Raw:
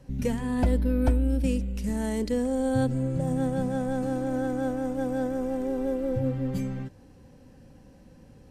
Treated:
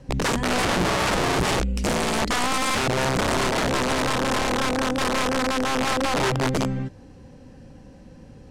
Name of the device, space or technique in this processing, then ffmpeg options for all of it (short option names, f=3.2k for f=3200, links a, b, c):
overflowing digital effects unit: -af "aeval=exprs='(mod(15*val(0)+1,2)-1)/15':c=same,lowpass=8.2k,volume=6.5dB"